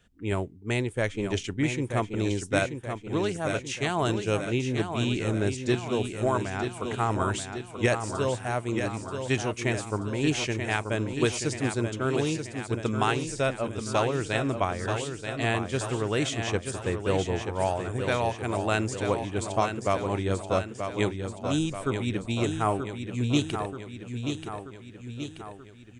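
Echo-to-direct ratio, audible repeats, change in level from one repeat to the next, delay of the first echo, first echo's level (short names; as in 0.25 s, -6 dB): -5.5 dB, 5, -5.0 dB, 0.932 s, -7.0 dB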